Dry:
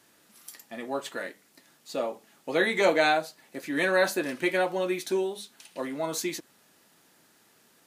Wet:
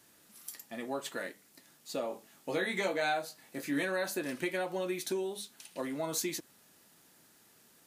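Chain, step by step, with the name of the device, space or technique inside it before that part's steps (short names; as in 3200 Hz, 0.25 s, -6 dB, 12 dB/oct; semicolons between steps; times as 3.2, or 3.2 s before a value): ASMR close-microphone chain (low shelf 170 Hz +6.5 dB; compressor 4:1, threshold -27 dBFS, peak gain reduction 9.5 dB; high shelf 6100 Hz +6.5 dB); 2.08–3.83 doubler 21 ms -5.5 dB; gain -4 dB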